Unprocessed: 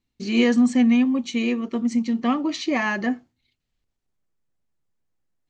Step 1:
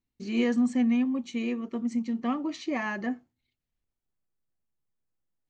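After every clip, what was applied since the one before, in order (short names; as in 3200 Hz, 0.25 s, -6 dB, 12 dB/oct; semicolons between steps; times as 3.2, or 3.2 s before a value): bell 4300 Hz -5 dB 1.7 oct; gain -7 dB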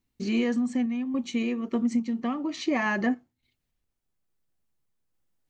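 compressor, threshold -28 dBFS, peak gain reduction 7.5 dB; random-step tremolo; gain +7.5 dB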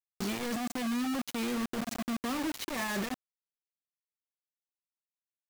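negative-ratio compressor -29 dBFS, ratio -1; bit-crush 5-bit; gain -5.5 dB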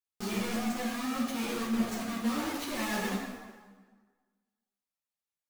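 plate-style reverb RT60 1.5 s, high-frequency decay 0.75×, DRR -2.5 dB; ensemble effect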